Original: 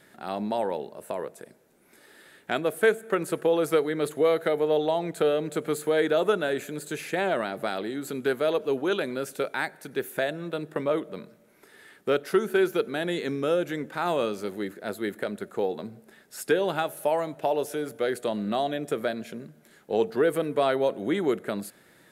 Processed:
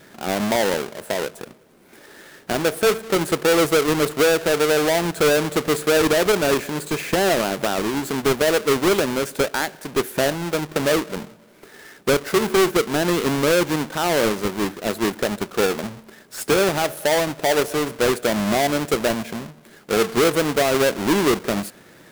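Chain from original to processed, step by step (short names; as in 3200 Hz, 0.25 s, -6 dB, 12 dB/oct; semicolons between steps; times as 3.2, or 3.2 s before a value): half-waves squared off; limiter -17 dBFS, peak gain reduction 7 dB; gain +4.5 dB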